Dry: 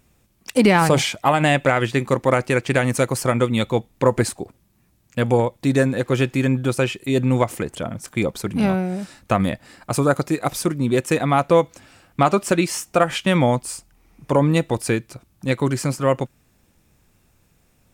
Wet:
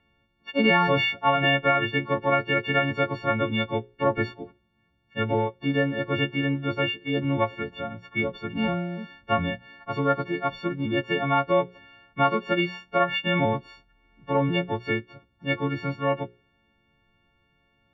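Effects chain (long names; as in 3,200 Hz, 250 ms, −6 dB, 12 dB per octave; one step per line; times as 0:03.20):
every partial snapped to a pitch grid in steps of 4 semitones
Butterworth low-pass 3,200 Hz 36 dB per octave
mains-hum notches 60/120/180/240/300/360/420/480/540 Hz
level −6.5 dB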